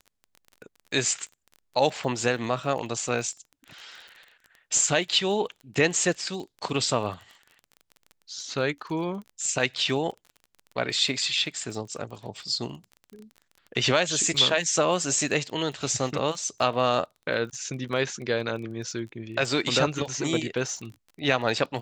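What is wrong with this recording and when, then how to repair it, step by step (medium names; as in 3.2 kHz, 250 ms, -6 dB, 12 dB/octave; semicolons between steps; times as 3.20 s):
crackle 23 per s -36 dBFS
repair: de-click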